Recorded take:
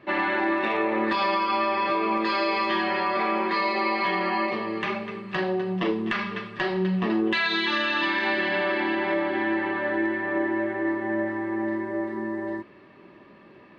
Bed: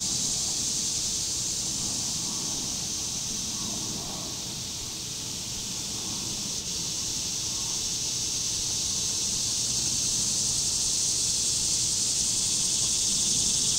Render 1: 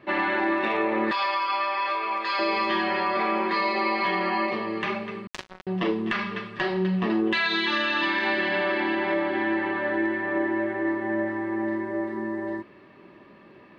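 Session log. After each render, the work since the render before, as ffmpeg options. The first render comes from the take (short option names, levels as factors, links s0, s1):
-filter_complex "[0:a]asettb=1/sr,asplit=3[s0][s1][s2];[s0]atrim=end=1.114[s3];[s1]atrim=start=1.11:end=2.39,asetpts=PTS-STARTPTS,afade=t=in:d=0.004:c=qsin,afade=t=out:st=1.276:d=0.004:c=qsin,highpass=750[s4];[s2]atrim=start=2.386[s5];[s3][s4]acrossfade=d=0.004:c1=hsin:c2=qsin[s6];[s6][s5]acrossfade=d=0.004:c1=qsin:c2=hsin,asettb=1/sr,asplit=3[s7][s8][s9];[s7]atrim=end=5.274[s10];[s8]atrim=start=5.27:end=5.67,asetpts=PTS-STARTPTS,afade=t=in:d=0.004:c=qsin,afade=t=out:st=0.396:d=0.004:c=qsin,acrusher=bits=2:mix=0:aa=0.5[s11];[s9]atrim=start=5.666[s12];[s10][s11]acrossfade=d=0.004:c1=hsin:c2=qsin[s13];[s13][s12]acrossfade=d=0.004:c1=qsin:c2=hsin"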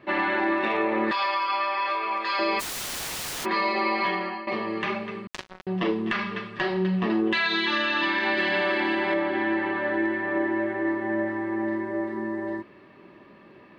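-filter_complex "[0:a]asplit=3[s0][s1][s2];[s0]afade=t=out:st=2.59:d=0.02[s3];[s1]aeval=exprs='(mod(25.1*val(0)+1,2)-1)/25.1':c=same,afade=t=in:st=2.59:d=0.02,afade=t=out:st=3.44:d=0.02[s4];[s2]afade=t=in:st=3.44:d=0.02[s5];[s3][s4][s5]amix=inputs=3:normalize=0,asettb=1/sr,asplit=3[s6][s7][s8];[s6]atrim=end=8.374[s9];[s7]atrim=start=8.37:end=9.14,asetpts=PTS-STARTPTS,afade=t=in:d=0.004:c=qsin,afade=t=out:st=0.766:d=0.004:c=qsin,highshelf=f=5000:g=10[s10];[s8]atrim=start=9.136[s11];[s9][s10]acrossfade=d=0.004:c1=hsin:c2=qsin[s12];[s12][s11]acrossfade=d=0.004:c1=qsin:c2=hsin,asplit=2[s13][s14];[s13]atrim=end=4.47,asetpts=PTS-STARTPTS,afade=t=out:st=4.05:d=0.42:silence=0.158489[s15];[s14]atrim=start=4.47,asetpts=PTS-STARTPTS,afade=t=in:d=0.004:c=hsin:silence=0.158489[s16];[s15][s16]concat=n=2:v=0:a=1"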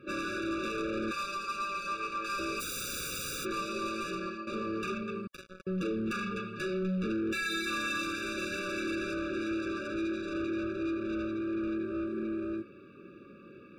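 -af "asoftclip=type=tanh:threshold=0.0355,afftfilt=real='re*eq(mod(floor(b*sr/1024/570),2),0)':imag='im*eq(mod(floor(b*sr/1024/570),2),0)':win_size=1024:overlap=0.75"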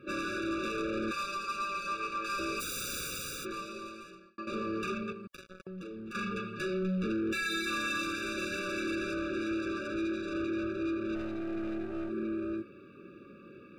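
-filter_complex "[0:a]asettb=1/sr,asplit=3[s0][s1][s2];[s0]atrim=end=5.124[s3];[s1]atrim=start=5.12:end=6.15,asetpts=PTS-STARTPTS,afade=t=in:d=0.004:c=qsin,afade=t=out:st=1.026:d=0.004:c=qsin,acompressor=threshold=0.00891:ratio=6:attack=3.2:release=140:knee=1:detection=peak[s4];[s2]atrim=start=6.146[s5];[s3][s4]acrossfade=d=0.004:c1=hsin:c2=qsin[s6];[s6][s5]acrossfade=d=0.004:c1=qsin:c2=hsin,asplit=3[s7][s8][s9];[s7]afade=t=out:st=11.14:d=0.02[s10];[s8]aeval=exprs='if(lt(val(0),0),0.447*val(0),val(0))':c=same,afade=t=in:st=11.14:d=0.02,afade=t=out:st=12.09:d=0.02[s11];[s9]afade=t=in:st=12.09:d=0.02[s12];[s10][s11][s12]amix=inputs=3:normalize=0,asplit=2[s13][s14];[s13]atrim=end=4.38,asetpts=PTS-STARTPTS,afade=t=out:st=2.95:d=1.43[s15];[s14]atrim=start=4.38,asetpts=PTS-STARTPTS,afade=t=in:d=0.004:c=hsin[s16];[s15][s16]concat=n=2:v=0:a=1"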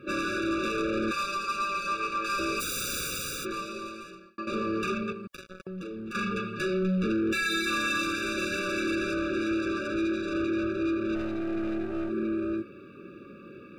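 -af "volume=1.78"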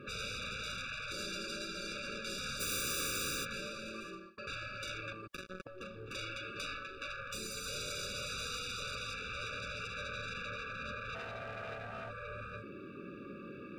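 -af "afftfilt=real='re*lt(hypot(re,im),0.0501)':imag='im*lt(hypot(re,im),0.0501)':win_size=1024:overlap=0.75,highshelf=f=6900:g=-5.5"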